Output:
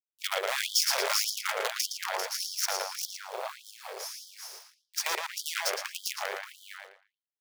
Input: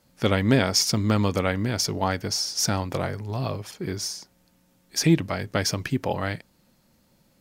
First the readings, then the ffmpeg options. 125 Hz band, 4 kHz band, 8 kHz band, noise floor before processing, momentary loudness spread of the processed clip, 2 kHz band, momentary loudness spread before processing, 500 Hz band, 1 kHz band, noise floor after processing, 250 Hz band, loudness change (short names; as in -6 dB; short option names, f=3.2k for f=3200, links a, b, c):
under -40 dB, -2.5 dB, -3.0 dB, -64 dBFS, 18 LU, -2.0 dB, 11 LU, -9.5 dB, -4.5 dB, under -85 dBFS, under -30 dB, -6.0 dB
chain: -filter_complex "[0:a]lowpass=f=11k:w=0.5412,lowpass=f=11k:w=1.3066,asplit=2[a][b];[b]aecho=0:1:396:0.631[c];[a][c]amix=inputs=2:normalize=0,acrusher=bits=4:dc=4:mix=0:aa=0.000001,asplit=2[d][e];[e]adelay=114,lowpass=f=4.4k:p=1,volume=-3dB,asplit=2[f][g];[g]adelay=114,lowpass=f=4.4k:p=1,volume=0.27,asplit=2[h][i];[i]adelay=114,lowpass=f=4.4k:p=1,volume=0.27,asplit=2[j][k];[k]adelay=114,lowpass=f=4.4k:p=1,volume=0.27[l];[f][h][j][l]amix=inputs=4:normalize=0[m];[d][m]amix=inputs=2:normalize=0,afftfilt=real='re*gte(b*sr/1024,370*pow(3100/370,0.5+0.5*sin(2*PI*1.7*pts/sr)))':imag='im*gte(b*sr/1024,370*pow(3100/370,0.5+0.5*sin(2*PI*1.7*pts/sr)))':win_size=1024:overlap=0.75,volume=-4.5dB"